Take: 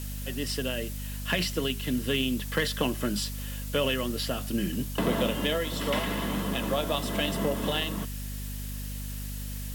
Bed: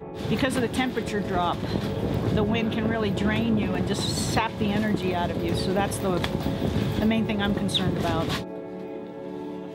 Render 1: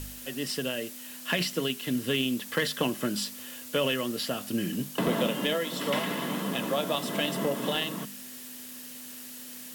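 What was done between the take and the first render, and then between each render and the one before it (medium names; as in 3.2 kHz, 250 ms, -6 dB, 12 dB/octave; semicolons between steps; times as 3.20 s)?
de-hum 50 Hz, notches 4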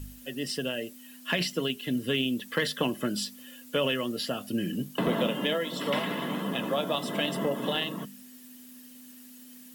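noise reduction 11 dB, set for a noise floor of -43 dBFS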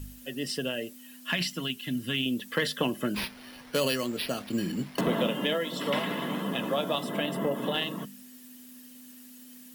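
1.30–2.26 s: peaking EQ 460 Hz -12.5 dB; 3.14–5.01 s: careless resampling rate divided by 6×, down none, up hold; 6.99–7.74 s: dynamic bell 5.1 kHz, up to -7 dB, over -46 dBFS, Q 0.73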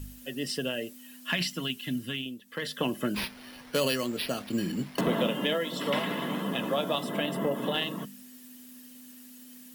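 1.91–2.93 s: dip -15.5 dB, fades 0.49 s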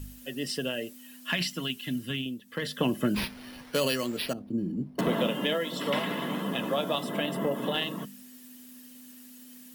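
2.10–3.64 s: bass shelf 280 Hz +7 dB; 4.33–4.99 s: FFT filter 320 Hz 0 dB, 920 Hz -15 dB, 1.9 kHz -26 dB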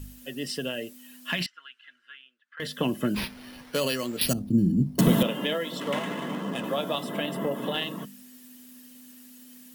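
1.46–2.60 s: ladder band-pass 1.6 kHz, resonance 70%; 4.21–5.23 s: tone controls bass +15 dB, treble +15 dB; 5.80–6.64 s: median filter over 9 samples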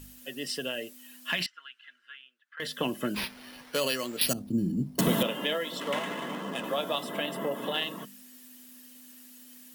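bass shelf 250 Hz -11 dB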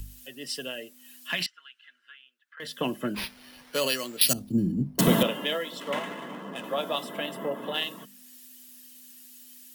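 upward compressor, threshold -34 dBFS; three bands expanded up and down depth 70%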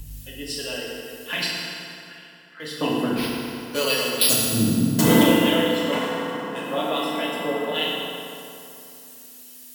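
FDN reverb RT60 2.8 s, high-frequency decay 0.65×, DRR -5.5 dB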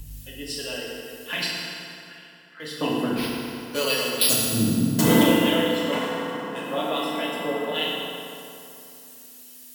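trim -1.5 dB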